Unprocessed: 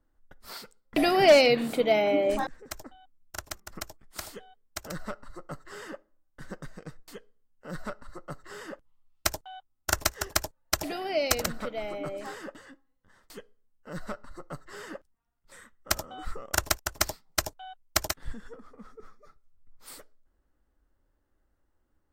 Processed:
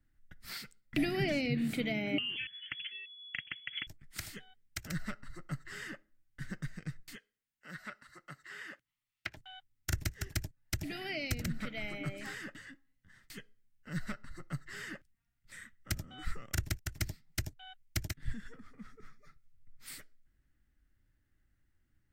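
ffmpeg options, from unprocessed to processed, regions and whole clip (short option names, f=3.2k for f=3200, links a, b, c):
-filter_complex "[0:a]asettb=1/sr,asplit=3[a][b][c];[a]atrim=end=2.184[d];[b]atrim=start=2.18:end=3.87,asetpts=PTS-STARTPTS,afade=t=in:d=0.004:c=qsin,afade=t=out:st=1.686:d=0.004:c=qsin,lowpass=f=2.9k:t=q:w=0.5098,lowpass=f=2.9k:t=q:w=0.6013,lowpass=f=2.9k:t=q:w=0.9,lowpass=f=2.9k:t=q:w=2.563,afreqshift=-3400,acontrast=74[e];[c]atrim=start=3.866[f];[d][e]acrossfade=d=0.004:c1=hsin:c2=qsin[g];[g][f]acrossfade=d=0.004:c1=qsin:c2=hsin,asettb=1/sr,asplit=3[h][i][j];[h]atrim=end=7.154[k];[i]atrim=start=7.15:end=9.37,asetpts=PTS-STARTPTS,afade=t=in:d=0.004:c=qsin,afade=t=out:st=2.216:d=0.004:c=qsin,acrossover=split=3300[l][m];[m]acompressor=threshold=-59dB:ratio=4:attack=1:release=60[n];[l][n]amix=inputs=2:normalize=0,highpass=f=740:p=1[o];[j]atrim=start=9.366[p];[k][o]acrossfade=d=0.004:c1=hsin:c2=qsin[q];[q][p]acrossfade=d=0.004:c1=qsin:c2=hsin,equalizer=f=125:t=o:w=1:g=9,equalizer=f=500:t=o:w=1:g=-11,equalizer=f=1k:t=o:w=1:g=-11,equalizer=f=2k:t=o:w=1:g=9,acrossover=split=470[r][s];[s]acompressor=threshold=-35dB:ratio=10[t];[r][t]amix=inputs=2:normalize=0,volume=-1.5dB"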